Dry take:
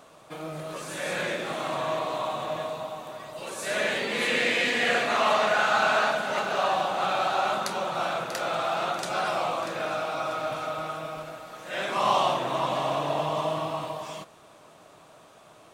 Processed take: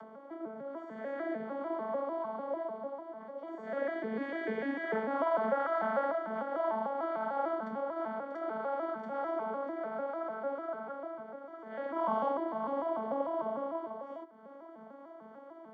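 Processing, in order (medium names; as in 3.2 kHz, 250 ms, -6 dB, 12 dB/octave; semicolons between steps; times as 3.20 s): vocoder on a broken chord major triad, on A3, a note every 149 ms; upward compressor, threshold -34 dBFS; Savitzky-Golay filter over 41 samples; trim -6.5 dB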